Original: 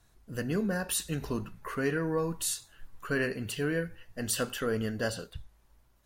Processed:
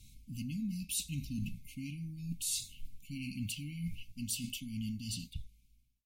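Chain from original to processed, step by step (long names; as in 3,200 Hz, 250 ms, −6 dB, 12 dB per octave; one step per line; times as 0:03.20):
fade-out on the ending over 1.50 s
reversed playback
downward compressor 5 to 1, threshold −44 dBFS, peak gain reduction 17 dB
reversed playback
linear-phase brick-wall band-stop 290–2,100 Hz
level +9 dB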